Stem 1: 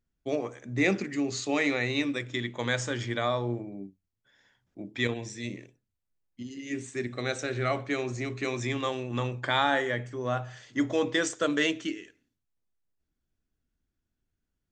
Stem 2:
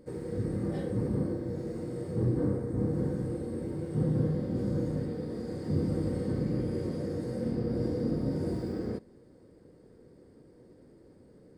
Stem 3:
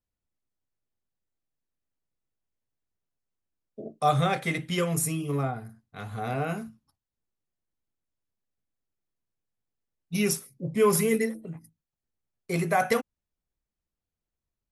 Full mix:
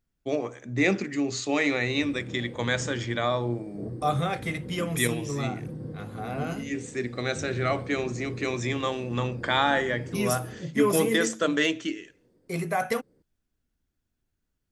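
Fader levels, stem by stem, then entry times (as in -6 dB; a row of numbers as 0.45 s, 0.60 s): +2.0 dB, -9.5 dB, -3.0 dB; 0.00 s, 1.65 s, 0.00 s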